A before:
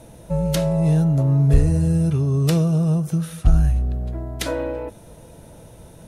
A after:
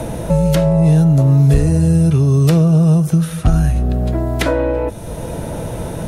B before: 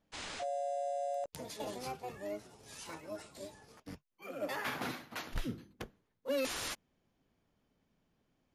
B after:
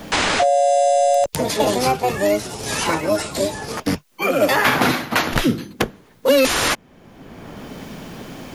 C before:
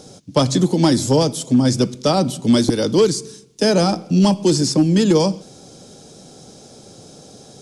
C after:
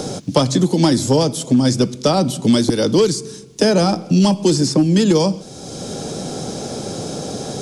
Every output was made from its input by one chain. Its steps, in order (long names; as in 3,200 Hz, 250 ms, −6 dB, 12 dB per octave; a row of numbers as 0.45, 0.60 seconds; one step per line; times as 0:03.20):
multiband upward and downward compressor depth 70%
normalise the peak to −1.5 dBFS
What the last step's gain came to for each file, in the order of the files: +6.5, +22.5, +1.0 decibels